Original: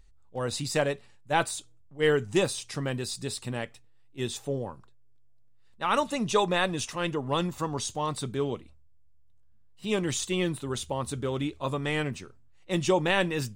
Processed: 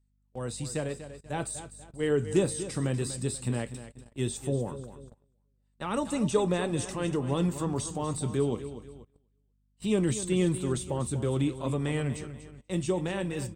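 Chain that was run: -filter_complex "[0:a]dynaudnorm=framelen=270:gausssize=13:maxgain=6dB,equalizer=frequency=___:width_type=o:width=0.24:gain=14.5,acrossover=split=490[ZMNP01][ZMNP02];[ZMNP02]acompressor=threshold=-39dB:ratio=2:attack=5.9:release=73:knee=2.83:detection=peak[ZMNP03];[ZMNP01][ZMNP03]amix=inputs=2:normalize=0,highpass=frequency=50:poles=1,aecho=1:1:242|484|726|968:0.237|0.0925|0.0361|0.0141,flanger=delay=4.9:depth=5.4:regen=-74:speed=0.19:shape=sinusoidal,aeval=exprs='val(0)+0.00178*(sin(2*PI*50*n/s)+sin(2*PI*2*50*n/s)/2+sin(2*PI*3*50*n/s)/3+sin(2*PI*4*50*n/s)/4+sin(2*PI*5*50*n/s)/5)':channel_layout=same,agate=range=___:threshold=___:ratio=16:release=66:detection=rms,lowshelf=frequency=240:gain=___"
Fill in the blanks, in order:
8.3k, -19dB, -50dB, 4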